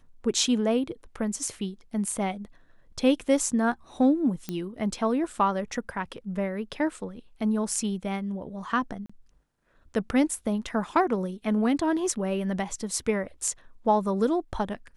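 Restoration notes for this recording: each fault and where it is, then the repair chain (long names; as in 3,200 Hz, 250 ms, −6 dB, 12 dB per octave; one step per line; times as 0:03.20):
0:04.49: click −17 dBFS
0:09.06–0:09.10: drop-out 35 ms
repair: click removal
repair the gap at 0:09.06, 35 ms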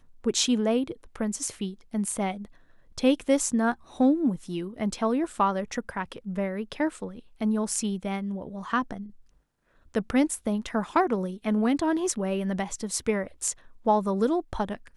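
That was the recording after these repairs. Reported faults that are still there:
none of them is left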